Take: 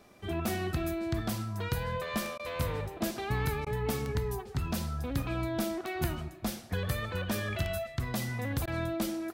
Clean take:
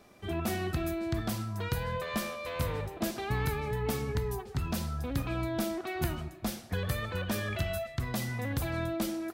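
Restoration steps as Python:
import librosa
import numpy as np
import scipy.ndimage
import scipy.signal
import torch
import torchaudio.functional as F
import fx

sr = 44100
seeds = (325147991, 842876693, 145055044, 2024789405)

y = fx.fix_declick_ar(x, sr, threshold=10.0)
y = fx.fix_interpolate(y, sr, at_s=(2.38, 3.65, 8.66), length_ms=13.0)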